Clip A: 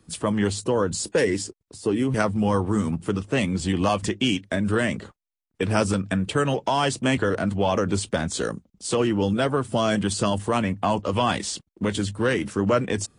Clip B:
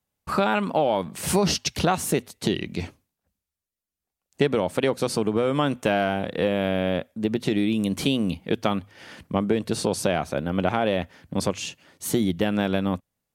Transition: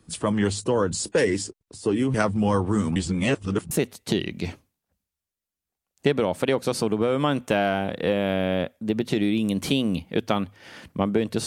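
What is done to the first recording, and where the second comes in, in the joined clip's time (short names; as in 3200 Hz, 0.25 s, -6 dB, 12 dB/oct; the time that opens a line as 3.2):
clip A
2.96–3.71 reverse
3.71 switch to clip B from 2.06 s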